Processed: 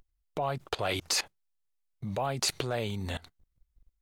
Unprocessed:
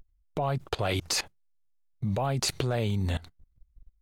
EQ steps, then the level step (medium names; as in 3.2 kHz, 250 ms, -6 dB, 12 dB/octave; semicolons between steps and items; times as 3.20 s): bass shelf 260 Hz -9.5 dB; 0.0 dB